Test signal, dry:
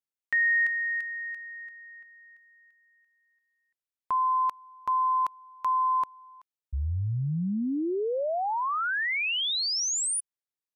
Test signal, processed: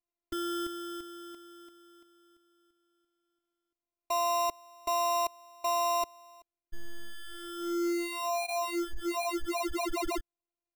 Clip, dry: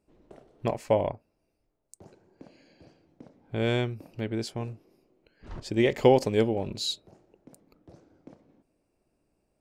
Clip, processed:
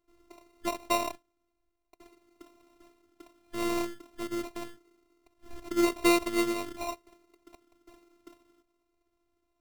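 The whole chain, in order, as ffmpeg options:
ffmpeg -i in.wav -af "acrusher=samples=27:mix=1:aa=0.000001,afftfilt=real='hypot(re,im)*cos(PI*b)':imag='0':win_size=512:overlap=0.75" out.wav

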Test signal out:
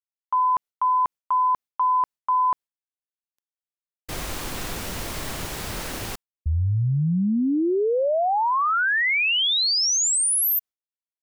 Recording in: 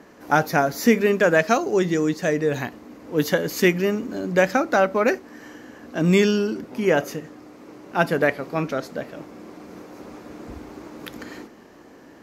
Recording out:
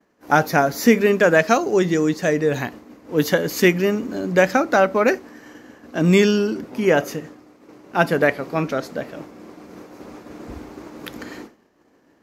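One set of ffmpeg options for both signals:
ffmpeg -i in.wav -af "agate=range=-33dB:threshold=-37dB:ratio=3:detection=peak,volume=2.5dB" out.wav

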